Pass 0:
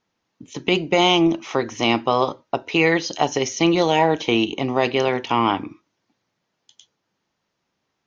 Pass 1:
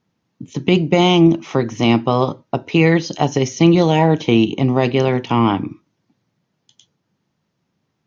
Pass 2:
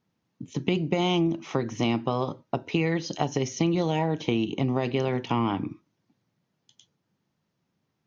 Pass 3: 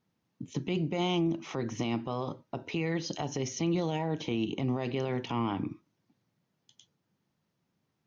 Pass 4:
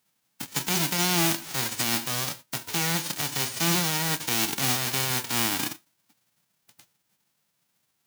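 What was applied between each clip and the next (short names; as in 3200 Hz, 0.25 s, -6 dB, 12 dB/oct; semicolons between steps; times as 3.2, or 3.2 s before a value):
bell 140 Hz +14 dB 2.2 oct; gain -1 dB
compressor 6:1, threshold -15 dBFS, peak gain reduction 8.5 dB; gain -6 dB
limiter -20 dBFS, peak gain reduction 10 dB; gain -2 dB
spectral whitening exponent 0.1; gain +5 dB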